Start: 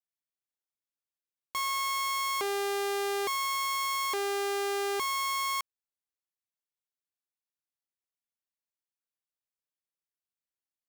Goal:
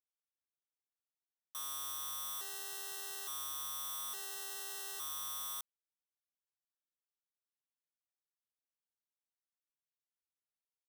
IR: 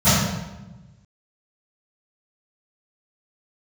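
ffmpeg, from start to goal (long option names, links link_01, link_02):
-af "acrusher=samples=19:mix=1:aa=0.000001,aderivative,volume=-3dB"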